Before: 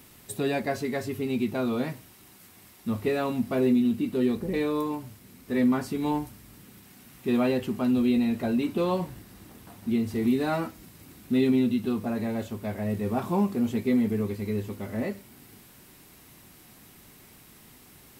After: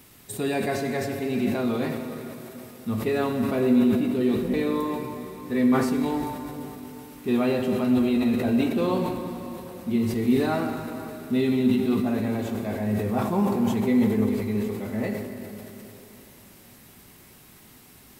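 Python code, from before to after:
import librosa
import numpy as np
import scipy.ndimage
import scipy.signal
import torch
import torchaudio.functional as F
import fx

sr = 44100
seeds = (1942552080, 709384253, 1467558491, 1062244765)

y = fx.rev_plate(x, sr, seeds[0], rt60_s=3.6, hf_ratio=0.8, predelay_ms=0, drr_db=3.5)
y = fx.sustainer(y, sr, db_per_s=45.0)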